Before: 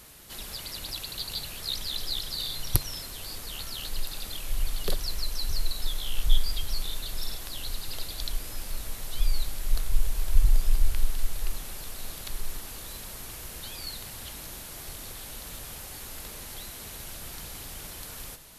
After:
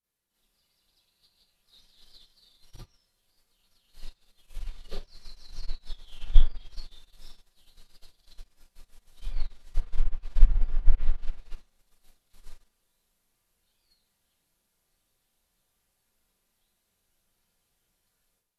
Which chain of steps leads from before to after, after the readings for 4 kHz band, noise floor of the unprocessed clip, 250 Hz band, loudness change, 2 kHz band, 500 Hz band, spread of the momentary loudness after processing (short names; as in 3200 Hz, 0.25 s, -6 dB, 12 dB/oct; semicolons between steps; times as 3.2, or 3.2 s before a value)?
-19.0 dB, -42 dBFS, -11.0 dB, +0.5 dB, -15.0 dB, -11.5 dB, 24 LU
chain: treble ducked by the level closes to 1800 Hz, closed at -15 dBFS; in parallel at -7.5 dB: soft clip -14.5 dBFS, distortion -14 dB; on the sum: Schroeder reverb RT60 0.36 s, combs from 32 ms, DRR -9 dB; upward expander 2.5:1, over -24 dBFS; gain -6.5 dB